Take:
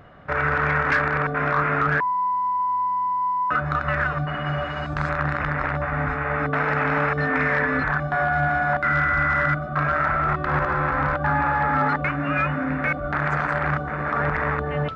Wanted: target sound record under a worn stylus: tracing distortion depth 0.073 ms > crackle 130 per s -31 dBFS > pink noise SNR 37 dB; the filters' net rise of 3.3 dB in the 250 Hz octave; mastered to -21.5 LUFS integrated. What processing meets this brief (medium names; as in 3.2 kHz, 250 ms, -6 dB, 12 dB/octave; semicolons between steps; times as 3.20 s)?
peaking EQ 250 Hz +4.5 dB; tracing distortion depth 0.073 ms; crackle 130 per s -31 dBFS; pink noise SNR 37 dB; trim +0.5 dB